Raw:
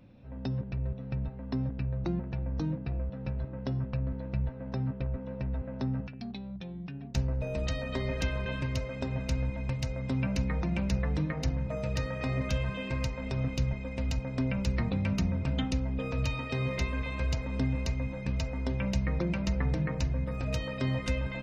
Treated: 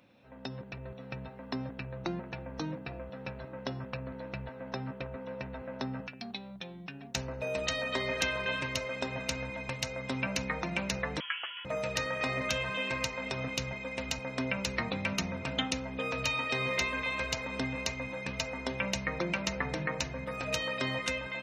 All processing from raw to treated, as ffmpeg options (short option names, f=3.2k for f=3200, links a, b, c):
-filter_complex "[0:a]asettb=1/sr,asplit=3[a][b][c];[a]atrim=end=11.204[d];[b]atrim=start=11.2:end=11.65,asetpts=PTS-STARTPTS,afade=t=in:d=0.004:c=qsin,afade=t=out:st=0.446:d=0.004:c=qsin,highpass=780,lowpass=f=3k:t=q:w=0.5098,lowpass=f=3k:t=q:w=0.6013,lowpass=f=3k:t=q:w=0.9,lowpass=f=3k:t=q:w=2.563,afreqshift=-3500[e];[c]atrim=start=11.646[f];[d][e]acrossfade=d=0.004:c1=hsin:c2=qsin[g];[g][f]acrossfade=d=0.004:c1=qsin:c2=hsin,highpass=f=970:p=1,bandreject=f=4.8k:w=12,dynaudnorm=f=200:g=7:m=3.5dB,volume=4.5dB"